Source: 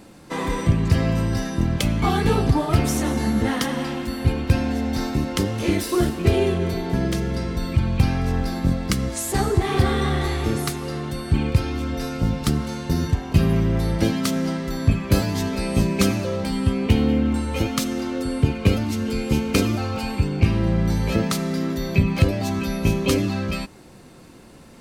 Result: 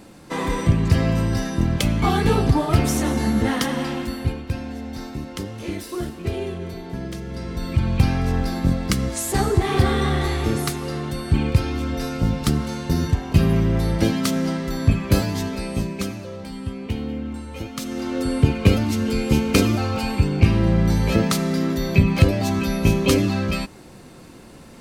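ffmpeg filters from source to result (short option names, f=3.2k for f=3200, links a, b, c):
-af "volume=21.5dB,afade=t=out:st=4.01:d=0.42:silence=0.354813,afade=t=in:st=7.25:d=0.66:silence=0.354813,afade=t=out:st=15.07:d=1.01:silence=0.316228,afade=t=in:st=17.74:d=0.5:silence=0.266073"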